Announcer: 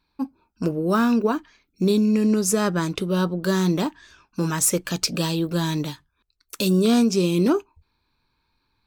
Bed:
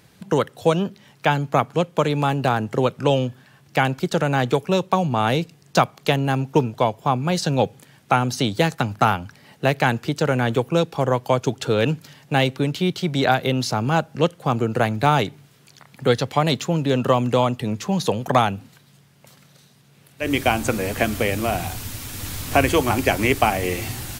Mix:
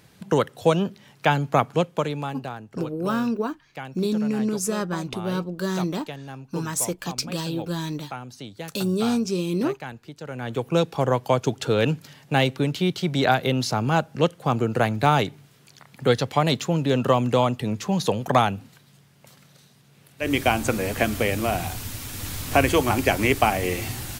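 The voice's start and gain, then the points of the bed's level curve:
2.15 s, -5.0 dB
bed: 1.79 s -1 dB
2.66 s -17 dB
10.22 s -17 dB
10.75 s -1.5 dB

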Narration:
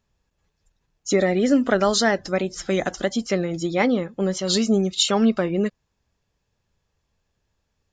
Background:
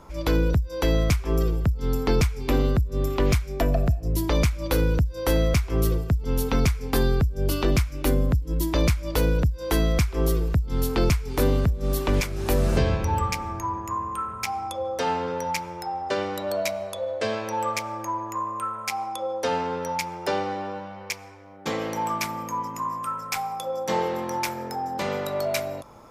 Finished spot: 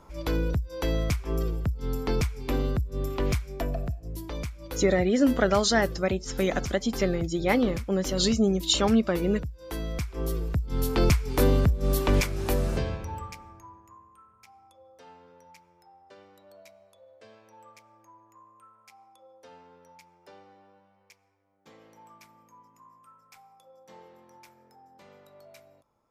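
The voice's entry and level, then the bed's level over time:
3.70 s, -3.5 dB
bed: 3.42 s -5.5 dB
4.25 s -13 dB
9.63 s -13 dB
11.12 s 0 dB
12.28 s 0 dB
14.12 s -26 dB

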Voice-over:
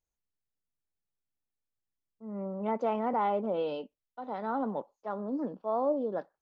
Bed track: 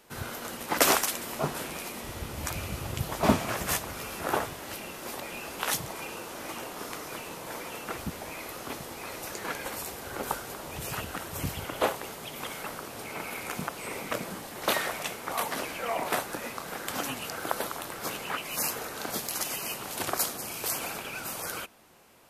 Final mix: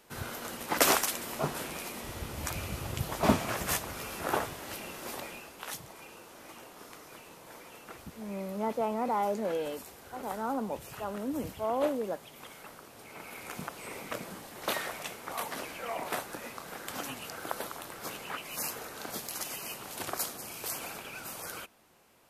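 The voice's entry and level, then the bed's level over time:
5.95 s, -1.0 dB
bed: 5.22 s -2 dB
5.53 s -11 dB
12.98 s -11 dB
13.6 s -5.5 dB

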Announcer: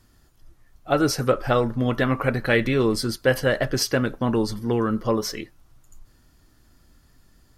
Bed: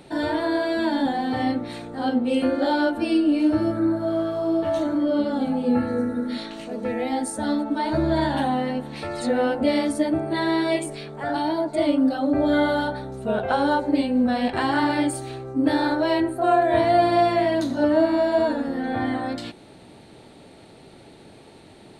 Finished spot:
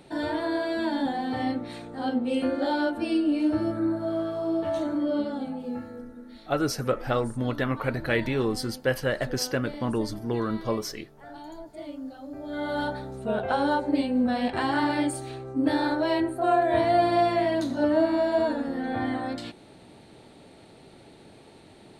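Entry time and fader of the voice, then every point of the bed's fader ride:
5.60 s, -5.5 dB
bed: 5.16 s -4.5 dB
6.09 s -18 dB
12.42 s -18 dB
12.83 s -3.5 dB

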